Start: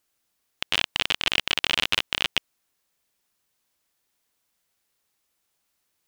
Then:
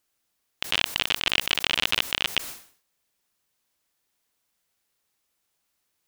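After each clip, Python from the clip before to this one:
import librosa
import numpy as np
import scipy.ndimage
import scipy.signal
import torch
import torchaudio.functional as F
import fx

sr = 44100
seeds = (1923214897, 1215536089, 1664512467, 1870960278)

y = fx.sustainer(x, sr, db_per_s=120.0)
y = F.gain(torch.from_numpy(y), -1.0).numpy()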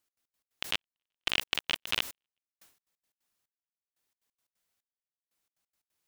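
y = fx.step_gate(x, sr, bpm=178, pattern='x.x.x.xxx......x', floor_db=-60.0, edge_ms=4.5)
y = F.gain(torch.from_numpy(y), -5.5).numpy()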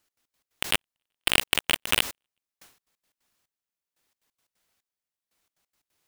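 y = fx.halfwave_hold(x, sr)
y = F.gain(torch.from_numpy(y), 4.0).numpy()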